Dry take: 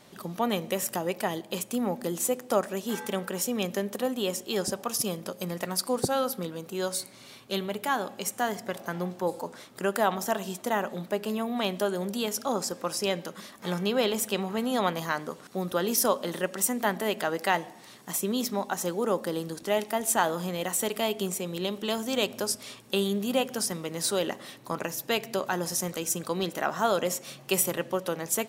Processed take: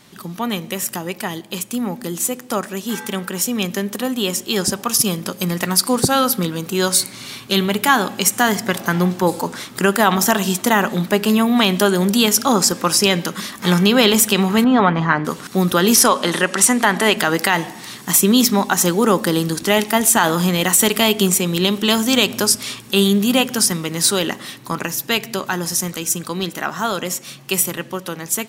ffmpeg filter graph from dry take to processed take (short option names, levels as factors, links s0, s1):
-filter_complex "[0:a]asettb=1/sr,asplit=3[s0][s1][s2];[s0]atrim=end=14.644[s3];[s1]atrim=start=14.64:end=15.25,asetpts=PTS-STARTPTS,afade=t=in:d=0.004:c=qsin,afade=t=out:st=0.606:d=0.004:c=qsin,lowpass=1700,aecho=1:1:7:0.34,atrim=end_sample=26901[s4];[s2]atrim=start=15.246[s5];[s3][s4]acrossfade=d=0.004:c1=hsin:c2=qsin[s6];[s6][s5]acrossfade=d=0.004:c1=qsin:c2=hsin,asettb=1/sr,asplit=3[s7][s8][s9];[s7]atrim=end=15.954[s10];[s8]atrim=start=15.95:end=17.17,asetpts=PTS-STARTPTS,afade=t=in:d=0.004:c=qsin,afade=t=out:st=1.216:d=0.004:c=qsin,lowpass=f=11000:w=0.5412,lowpass=f=11000:w=1.3066,aemphasis=mode=production:type=50kf,asplit=2[s11][s12];[s12]highpass=f=720:p=1,volume=2.82,asoftclip=type=tanh:threshold=0.668[s13];[s11][s13]amix=inputs=2:normalize=0,lowpass=f=1500:p=1,volume=0.501[s14];[s9]atrim=start=17.166[s15];[s10][s14]acrossfade=d=0.004:c1=hsin:c2=qsin[s16];[s16][s15]acrossfade=d=0.004:c1=qsin:c2=hsin,equalizer=f=580:t=o:w=1.1:g=-9.5,dynaudnorm=f=620:g=17:m=3.76,alimiter=level_in=2.82:limit=0.891:release=50:level=0:latency=1,volume=0.891"